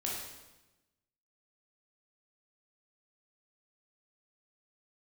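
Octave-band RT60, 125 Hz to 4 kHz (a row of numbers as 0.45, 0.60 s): 1.3, 1.3, 1.1, 1.0, 1.0, 0.95 s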